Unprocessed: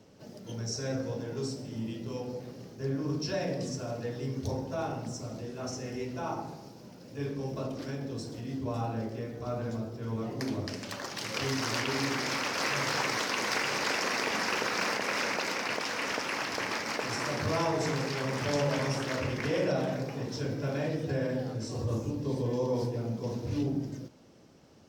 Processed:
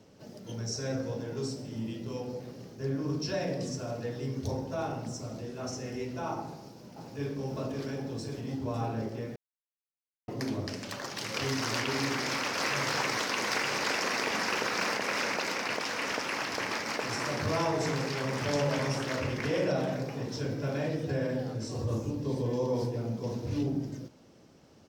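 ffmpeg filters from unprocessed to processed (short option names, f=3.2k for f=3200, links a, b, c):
-filter_complex "[0:a]asplit=2[a][b];[b]afade=t=in:st=6.42:d=0.01,afade=t=out:st=7.47:d=0.01,aecho=0:1:540|1080|1620|2160|2700|3240|3780|4320|4860|5400|5940|6480:0.595662|0.446747|0.33506|0.251295|0.188471|0.141353|0.106015|0.0795113|0.0596335|0.0447251|0.0335438|0.0251579[c];[a][c]amix=inputs=2:normalize=0,asplit=3[d][e][f];[d]atrim=end=9.36,asetpts=PTS-STARTPTS,afade=t=out:st=9.356:d=0.004:c=hsin[g];[e]atrim=start=9.36:end=10.28,asetpts=PTS-STARTPTS,volume=0[h];[f]atrim=start=10.28,asetpts=PTS-STARTPTS,afade=t=in:d=0.004:c=hsin[i];[g][h][i]concat=n=3:v=0:a=1"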